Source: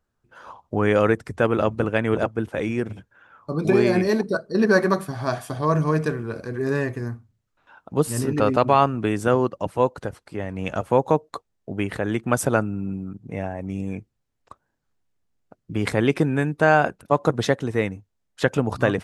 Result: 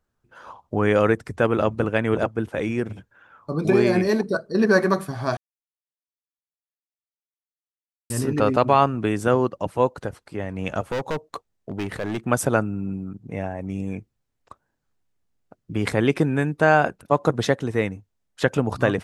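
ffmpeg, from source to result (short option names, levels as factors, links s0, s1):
-filter_complex "[0:a]asettb=1/sr,asplit=3[s0][s1][s2];[s0]atrim=end=10.884[s3];[s1]atrim=start=10.88:end=12.26,asetpts=PTS-STARTPTS,afade=t=in:d=0.004:c=qsin,afade=t=out:st=1.376:d=0.004:c=qsin,volume=13.3,asoftclip=hard,volume=0.075[s4];[s2]atrim=start=12.256[s5];[s3][s4]acrossfade=d=0.004:c1=hsin:c2=qsin[s6];[s6][s5]acrossfade=d=0.004:c1=qsin:c2=hsin,asplit=3[s7][s8][s9];[s7]atrim=end=5.37,asetpts=PTS-STARTPTS,afade=t=out:st=5.366:d=0.004:c=hsin[s10];[s8]atrim=start=5.37:end=8.1,asetpts=PTS-STARTPTS,volume=0[s11];[s9]atrim=start=8.1,asetpts=PTS-STARTPTS,afade=t=in:d=0.004:c=hsin[s12];[s10][s11][s12]concat=n=3:v=0:a=1"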